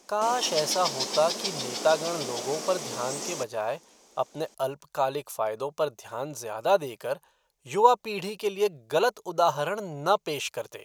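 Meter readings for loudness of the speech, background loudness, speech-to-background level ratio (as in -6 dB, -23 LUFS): -28.5 LUFS, -31.5 LUFS, 3.0 dB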